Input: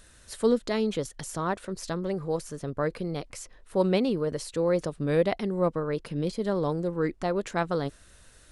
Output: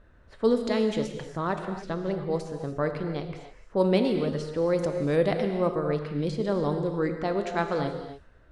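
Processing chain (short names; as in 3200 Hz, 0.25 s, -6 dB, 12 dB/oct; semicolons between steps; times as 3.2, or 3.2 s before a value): low-pass opened by the level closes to 1200 Hz, open at -21.5 dBFS; non-linear reverb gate 0.32 s flat, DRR 5.5 dB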